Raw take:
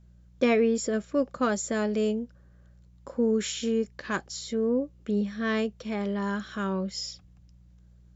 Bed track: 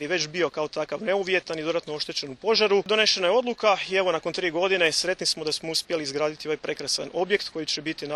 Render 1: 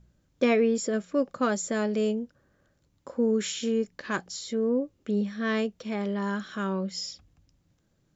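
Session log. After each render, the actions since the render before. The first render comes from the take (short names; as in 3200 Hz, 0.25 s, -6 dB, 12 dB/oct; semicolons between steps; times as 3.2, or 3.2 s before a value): de-hum 60 Hz, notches 3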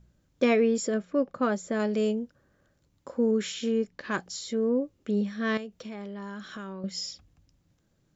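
0.94–1.8 LPF 2100 Hz 6 dB/oct; 3.31–4.18 air absorption 63 m; 5.57–6.84 compressor 5:1, threshold -36 dBFS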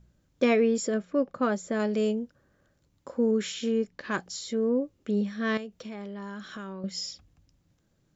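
nothing audible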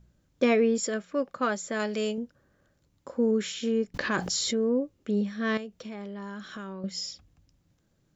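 0.83–2.18 tilt shelf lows -5.5 dB, about 800 Hz; 3.94–4.62 fast leveller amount 70%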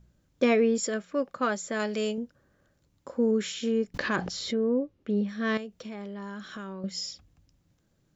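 4.16–5.29 air absorption 140 m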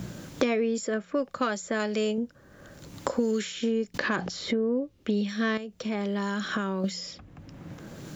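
three-band squash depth 100%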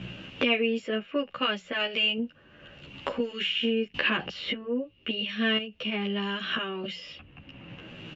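synth low-pass 2800 Hz, resonance Q 14; endless flanger 12 ms -0.67 Hz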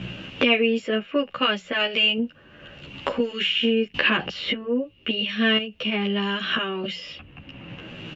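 gain +5.5 dB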